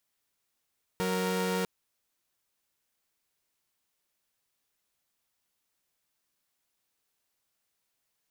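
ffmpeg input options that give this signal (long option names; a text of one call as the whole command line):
ffmpeg -f lavfi -i "aevalsrc='0.0398*((2*mod(185*t,1)-1)+(2*mod(466.16*t,1)-1))':duration=0.65:sample_rate=44100" out.wav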